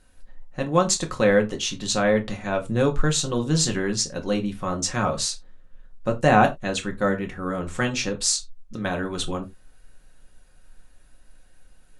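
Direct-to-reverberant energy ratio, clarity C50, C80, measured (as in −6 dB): 2.5 dB, 17.5 dB, 24.0 dB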